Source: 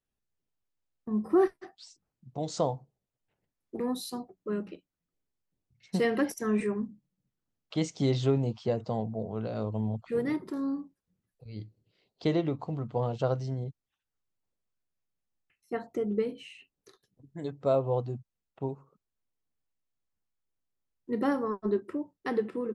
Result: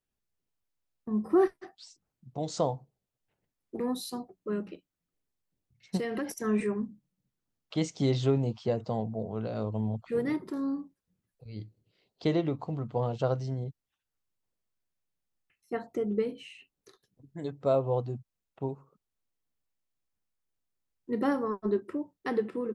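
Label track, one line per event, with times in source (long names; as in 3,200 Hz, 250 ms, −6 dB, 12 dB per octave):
5.970000	6.440000	downward compressor, threshold −29 dBFS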